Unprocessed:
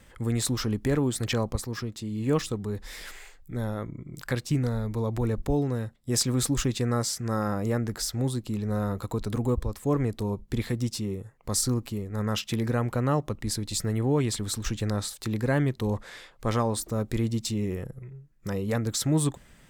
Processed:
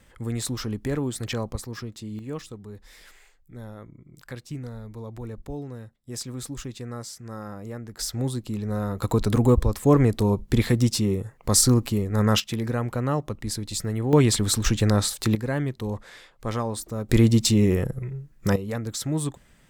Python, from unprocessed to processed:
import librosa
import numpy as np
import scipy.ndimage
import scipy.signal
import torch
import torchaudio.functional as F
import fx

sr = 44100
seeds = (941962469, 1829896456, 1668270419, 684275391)

y = fx.gain(x, sr, db=fx.steps((0.0, -2.0), (2.19, -9.0), (7.99, 0.5), (9.02, 8.0), (12.4, 0.0), (14.13, 8.0), (15.35, -2.0), (17.09, 10.0), (18.56, -2.5)))